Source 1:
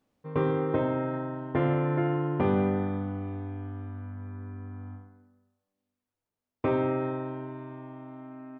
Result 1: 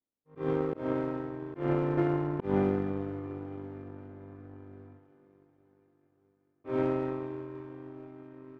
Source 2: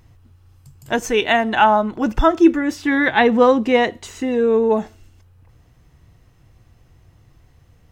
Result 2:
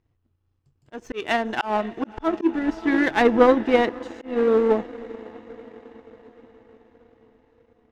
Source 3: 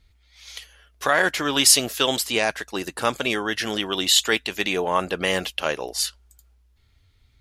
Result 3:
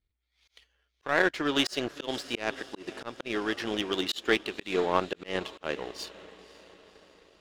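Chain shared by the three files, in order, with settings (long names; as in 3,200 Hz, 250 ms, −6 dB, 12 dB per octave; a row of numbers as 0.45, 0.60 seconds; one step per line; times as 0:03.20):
parametric band 350 Hz +7 dB 0.89 octaves
on a send: feedback delay with all-pass diffusion 535 ms, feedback 67%, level −15 dB
on the sum: volume swells 152 ms
low-pass filter 4,500 Hz 12 dB per octave
power curve on the samples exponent 1.4
level −2.5 dB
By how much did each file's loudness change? −2.5, −4.5, −9.0 LU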